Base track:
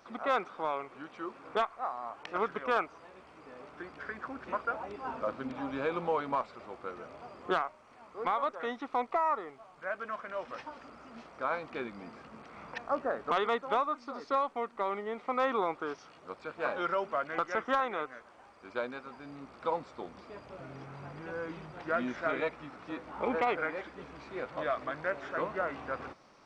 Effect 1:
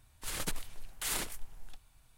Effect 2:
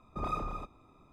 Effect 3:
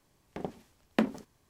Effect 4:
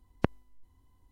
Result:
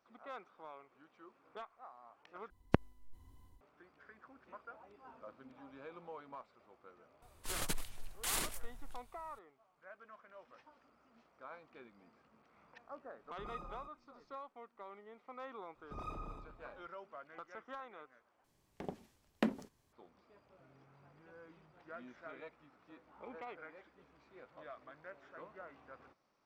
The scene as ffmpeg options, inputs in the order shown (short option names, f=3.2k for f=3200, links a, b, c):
-filter_complex "[2:a]asplit=2[a][b];[0:a]volume=-18.5dB[c];[4:a]dynaudnorm=f=160:g=3:m=8.5dB[d];[a]aecho=1:1:5.6:0.56[e];[b]asplit=2[f][g];[g]adelay=114,lowpass=f=2.1k:p=1,volume=-5.5dB,asplit=2[h][i];[i]adelay=114,lowpass=f=2.1k:p=1,volume=0.52,asplit=2[j][k];[k]adelay=114,lowpass=f=2.1k:p=1,volume=0.52,asplit=2[l][m];[m]adelay=114,lowpass=f=2.1k:p=1,volume=0.52,asplit=2[n][o];[o]adelay=114,lowpass=f=2.1k:p=1,volume=0.52,asplit=2[p][q];[q]adelay=114,lowpass=f=2.1k:p=1,volume=0.52,asplit=2[r][s];[s]adelay=114,lowpass=f=2.1k:p=1,volume=0.52[t];[f][h][j][l][n][p][r][t]amix=inputs=8:normalize=0[u];[c]asplit=3[v][w][x];[v]atrim=end=2.504[y];[d]atrim=end=1.11,asetpts=PTS-STARTPTS,volume=-4.5dB[z];[w]atrim=start=3.606:end=18.444[aa];[3:a]atrim=end=1.49,asetpts=PTS-STARTPTS,volume=-6.5dB[ab];[x]atrim=start=19.926[ac];[1:a]atrim=end=2.17,asetpts=PTS-STARTPTS,volume=-2dB,afade=t=in:d=0.004:c=hsin,afade=t=out:st=2.166:d=0.004:c=hsin,adelay=318402S[ad];[e]atrim=end=1.12,asetpts=PTS-STARTPTS,volume=-15.5dB,afade=t=in:d=0.004:c=hsin,afade=t=out:st=1.116:d=0.004:c=hsin,adelay=13220[ae];[u]atrim=end=1.12,asetpts=PTS-STARTPTS,volume=-11dB,afade=t=in:d=0.004:c=hsin,afade=t=out:st=1.116:d=0.004:c=hsin,adelay=15750[af];[y][z]acrossfade=d=0.004:c1=hsin:c2=hsin[ag];[ag][aa]acrossfade=d=0.004:c1=hsin:c2=hsin[ah];[ah][ab]acrossfade=d=0.004:c1=hsin:c2=hsin[ai];[ai][ac]acrossfade=d=0.004:c1=hsin:c2=hsin[aj];[aj][ad][ae][af]amix=inputs=4:normalize=0"